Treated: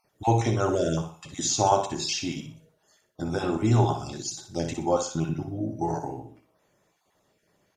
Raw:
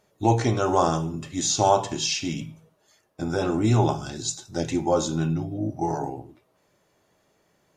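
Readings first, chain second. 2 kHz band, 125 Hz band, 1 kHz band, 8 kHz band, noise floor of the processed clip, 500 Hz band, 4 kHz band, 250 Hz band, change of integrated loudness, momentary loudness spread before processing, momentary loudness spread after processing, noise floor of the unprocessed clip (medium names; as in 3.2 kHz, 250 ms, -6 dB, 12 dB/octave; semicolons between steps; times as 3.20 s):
-3.0 dB, -1.0 dB, -2.5 dB, -2.0 dB, -72 dBFS, -2.5 dB, -3.0 dB, -3.0 dB, -2.5 dB, 10 LU, 12 LU, -68 dBFS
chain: random holes in the spectrogram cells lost 23%; feedback delay 61 ms, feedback 32%, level -8.5 dB; trim -2 dB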